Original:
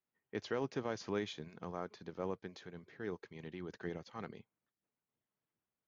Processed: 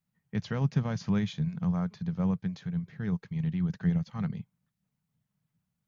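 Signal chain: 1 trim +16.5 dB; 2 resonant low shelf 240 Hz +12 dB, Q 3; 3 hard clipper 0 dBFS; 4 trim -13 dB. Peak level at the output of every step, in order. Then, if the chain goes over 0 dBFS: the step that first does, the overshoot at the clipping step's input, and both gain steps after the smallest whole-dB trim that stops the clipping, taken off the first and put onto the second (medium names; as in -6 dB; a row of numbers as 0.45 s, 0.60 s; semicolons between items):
-8.0 dBFS, -2.5 dBFS, -2.5 dBFS, -15.5 dBFS; nothing clips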